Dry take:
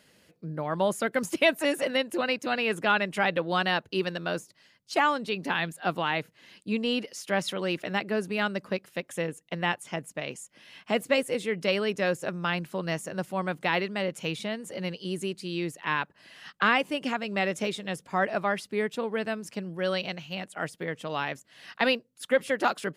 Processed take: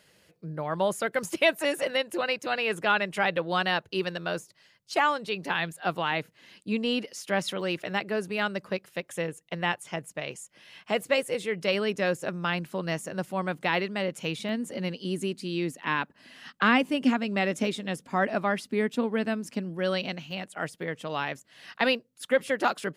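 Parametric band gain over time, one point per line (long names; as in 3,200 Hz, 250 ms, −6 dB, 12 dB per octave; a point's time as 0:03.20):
parametric band 250 Hz 0.39 octaves
−9 dB
from 0:06.12 +0.5 dB
from 0:07.61 −7 dB
from 0:11.74 +2 dB
from 0:14.49 +11.5 dB
from 0:20.31 0 dB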